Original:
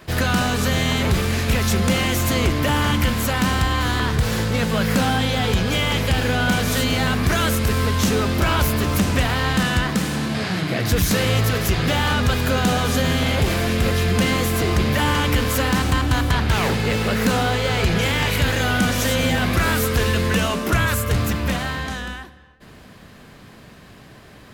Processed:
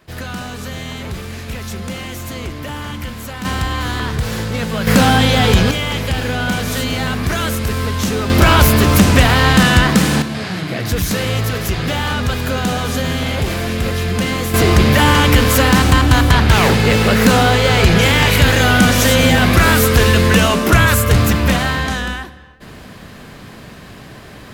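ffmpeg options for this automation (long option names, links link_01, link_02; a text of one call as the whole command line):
ffmpeg -i in.wav -af "asetnsamples=nb_out_samples=441:pad=0,asendcmd='3.45 volume volume 0dB;4.87 volume volume 8dB;5.71 volume volume 0.5dB;8.3 volume volume 9dB;10.22 volume volume 0.5dB;14.54 volume volume 8dB',volume=-7.5dB" out.wav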